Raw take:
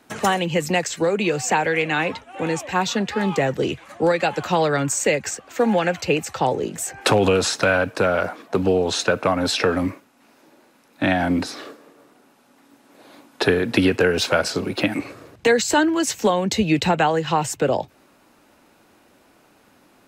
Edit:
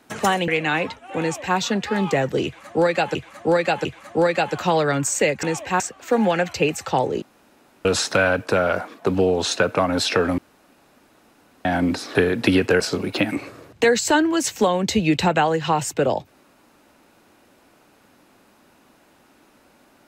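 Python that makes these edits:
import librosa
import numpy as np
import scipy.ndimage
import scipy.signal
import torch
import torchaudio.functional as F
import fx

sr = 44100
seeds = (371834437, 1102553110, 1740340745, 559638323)

y = fx.edit(x, sr, fx.cut(start_s=0.48, length_s=1.25),
    fx.duplicate(start_s=2.45, length_s=0.37, to_s=5.28),
    fx.repeat(start_s=3.7, length_s=0.7, count=3),
    fx.room_tone_fill(start_s=6.7, length_s=0.63),
    fx.room_tone_fill(start_s=9.86, length_s=1.27),
    fx.cut(start_s=11.63, length_s=1.82),
    fx.cut(start_s=14.1, length_s=0.33), tone=tone)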